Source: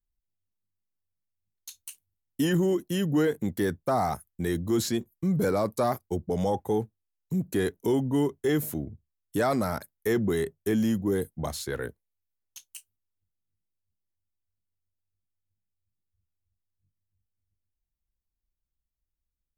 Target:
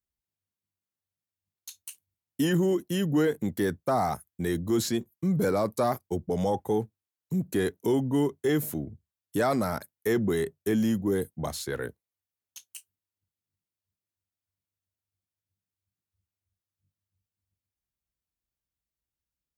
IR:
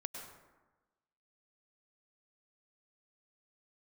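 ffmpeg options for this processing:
-af "highpass=79"

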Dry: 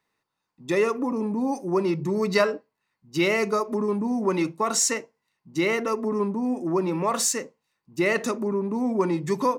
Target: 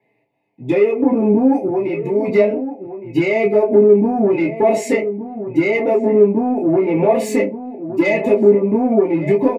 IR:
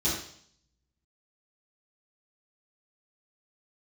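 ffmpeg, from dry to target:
-filter_complex "[0:a]firequalizer=gain_entry='entry(110,0);entry(410,9);entry(890,4);entry(1400,-22);entry(2100,14);entry(3400,-5);entry(6300,-20);entry(9400,-13)':delay=0.05:min_phase=1,acompressor=threshold=-20dB:ratio=16,asettb=1/sr,asplit=3[link_01][link_02][link_03];[link_01]atrim=end=1.684[link_04];[link_02]atrim=start=1.68:end=2.28,asetpts=PTS-STARTPTS,afade=type=in:duration=0.004:curve=qsin,afade=type=out:start_time=0.596:duration=0.004:curve=qsin,lowshelf=frequency=320:gain=-10.5[link_05];[link_03]atrim=start=2.276[link_06];[link_04][link_05]acrossfade=duration=0.004:curve1=hsin:curve2=qsin[link_07];[link_07][link_06]acrossfade=duration=0.004:curve1=qsin:curve2=hsin,asettb=1/sr,asplit=3[link_08][link_09][link_10];[link_08]atrim=end=7.254[link_11];[link_09]atrim=start=7.25:end=8.24,asetpts=PTS-STARTPTS,afade=type=in:duration=0.004:curve=qsin,afade=type=out:start_time=0.986:duration=0.004:curve=qsin,aecho=1:1:3.5:0.81,atrim=end_sample=43659[link_12];[link_10]atrim=start=8.236[link_13];[link_11][link_12]acrossfade=duration=0.004:curve1=hsin:curve2=qsin[link_14];[link_14][link_13]acrossfade=duration=0.004:curve1=qsin:curve2=hsin,asoftclip=type=tanh:threshold=-16dB,asplit=2[link_15][link_16];[link_16]adelay=1166,volume=-11dB,highshelf=frequency=4000:gain=-26.2[link_17];[link_15][link_17]amix=inputs=2:normalize=0[link_18];[1:a]atrim=start_sample=2205,atrim=end_sample=3969,asetrate=88200,aresample=44100[link_19];[link_18][link_19]afir=irnorm=-1:irlink=0,volume=2.5dB"

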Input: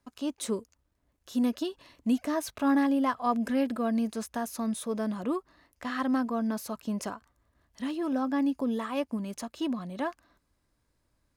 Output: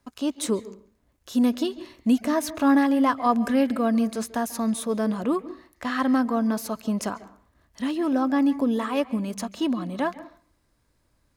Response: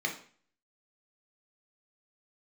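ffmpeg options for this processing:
-filter_complex "[0:a]asplit=2[link_01][link_02];[link_02]highshelf=frequency=4700:gain=-7.5[link_03];[1:a]atrim=start_sample=2205,adelay=138[link_04];[link_03][link_04]afir=irnorm=-1:irlink=0,volume=-21dB[link_05];[link_01][link_05]amix=inputs=2:normalize=0,volume=6dB"

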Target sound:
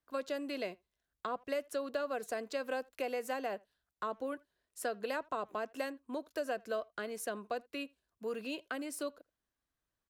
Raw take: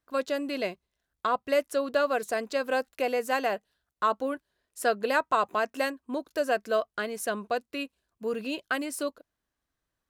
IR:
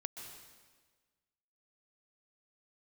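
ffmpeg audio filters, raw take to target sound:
-filter_complex "[0:a]acrossover=split=230|620[link_01][link_02][link_03];[link_01]acompressor=threshold=-50dB:ratio=4[link_04];[link_02]acompressor=threshold=-32dB:ratio=4[link_05];[link_03]acompressor=threshold=-34dB:ratio=4[link_06];[link_04][link_05][link_06]amix=inputs=3:normalize=0,asplit=2[link_07][link_08];[link_08]adelay=80,highpass=300,lowpass=3400,asoftclip=type=hard:threshold=-25.5dB,volume=-26dB[link_09];[link_07][link_09]amix=inputs=2:normalize=0,volume=-5.5dB"

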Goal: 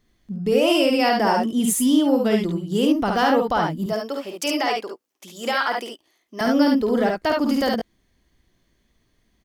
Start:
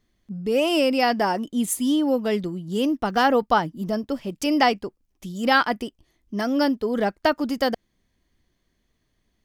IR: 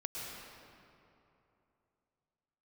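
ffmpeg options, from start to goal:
-filter_complex "[0:a]asettb=1/sr,asplit=3[link_01][link_02][link_03];[link_01]atrim=end=3.864[link_04];[link_02]atrim=start=3.86:end=6.41,asetpts=PTS-STARTPTS,afade=type=in:duration=0.004:curve=qsin,afade=type=out:start_time=2.546:duration=0.004:curve=qsin,highpass=490[link_05];[link_03]atrim=start=6.406[link_06];[link_04][link_05]acrossfade=duration=0.004:curve1=hsin:curve2=qsin[link_07];[link_07][link_06]acrossfade=duration=0.004:curve1=qsin:curve2=hsin,alimiter=limit=-15.5dB:level=0:latency=1:release=49,aecho=1:1:52|70:0.531|0.631,volume=3dB"

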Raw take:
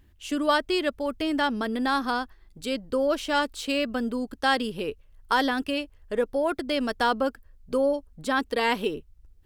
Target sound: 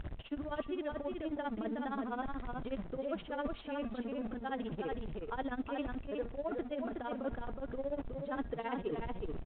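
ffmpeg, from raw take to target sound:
ffmpeg -i in.wav -filter_complex "[0:a]aeval=exprs='val(0)+0.5*0.0282*sgn(val(0))':channel_layout=same,lowpass=frequency=1000:poles=1,equalizer=frequency=670:width=3.4:gain=4,bandreject=frequency=234.5:width_type=h:width=4,bandreject=frequency=469:width_type=h:width=4,bandreject=frequency=703.5:width_type=h:width=4,bandreject=frequency=938:width_type=h:width=4,bandreject=frequency=1172.5:width_type=h:width=4,bandreject=frequency=1407:width_type=h:width=4,bandreject=frequency=1641.5:width_type=h:width=4,bandreject=frequency=1876:width_type=h:width=4,bandreject=frequency=2110.5:width_type=h:width=4,bandreject=frequency=2345:width_type=h:width=4,bandreject=frequency=2579.5:width_type=h:width=4,bandreject=frequency=2814:width_type=h:width=4,bandreject=frequency=3048.5:width_type=h:width=4,bandreject=frequency=3283:width_type=h:width=4,bandreject=frequency=3517.5:width_type=h:width=4,bandreject=frequency=3752:width_type=h:width=4,bandreject=frequency=3986.5:width_type=h:width=4,bandreject=frequency=4221:width_type=h:width=4,bandreject=frequency=4455.5:width_type=h:width=4,bandreject=frequency=4690:width_type=h:width=4,bandreject=frequency=4924.5:width_type=h:width=4,bandreject=frequency=5159:width_type=h:width=4,bandreject=frequency=5393.5:width_type=h:width=4,bandreject=frequency=5628:width_type=h:width=4,bandreject=frequency=5862.5:width_type=h:width=4,bandreject=frequency=6097:width_type=h:width=4,bandreject=frequency=6331.5:width_type=h:width=4,bandreject=frequency=6566:width_type=h:width=4,bandreject=frequency=6800.5:width_type=h:width=4,bandreject=frequency=7035:width_type=h:width=4,bandreject=frequency=7269.5:width_type=h:width=4,bandreject=frequency=7504:width_type=h:width=4,areverse,acompressor=threshold=-31dB:ratio=16,areverse,tremolo=f=15:d=0.91,asplit=2[link_01][link_02];[link_02]aecho=0:1:368:0.596[link_03];[link_01][link_03]amix=inputs=2:normalize=0,volume=-1dB" -ar 8000 -c:a pcm_mulaw out.wav

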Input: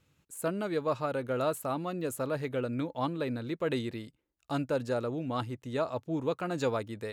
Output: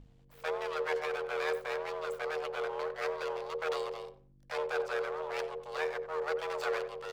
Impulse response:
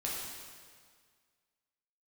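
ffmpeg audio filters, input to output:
-filter_complex "[0:a]lowpass=6000,aeval=exprs='abs(val(0))':channel_layout=same,afreqshift=460,aeval=exprs='val(0)+0.00447*(sin(2*PI*50*n/s)+sin(2*PI*2*50*n/s)/2+sin(2*PI*3*50*n/s)/3+sin(2*PI*4*50*n/s)/4+sin(2*PI*5*50*n/s)/5)':channel_layout=same,tremolo=f=82:d=0.519,bandreject=frequency=50:width_type=h:width=6,bandreject=frequency=100:width_type=h:width=6,bandreject=frequency=150:width_type=h:width=6,bandreject=frequency=200:width_type=h:width=6,bandreject=frequency=250:width_type=h:width=6,asplit=2[link_01][link_02];[link_02]adelay=90,lowpass=frequency=1500:poles=1,volume=-11dB,asplit=2[link_03][link_04];[link_04]adelay=90,lowpass=frequency=1500:poles=1,volume=0.23,asplit=2[link_05][link_06];[link_06]adelay=90,lowpass=frequency=1500:poles=1,volume=0.23[link_07];[link_01][link_03][link_05][link_07]amix=inputs=4:normalize=0"

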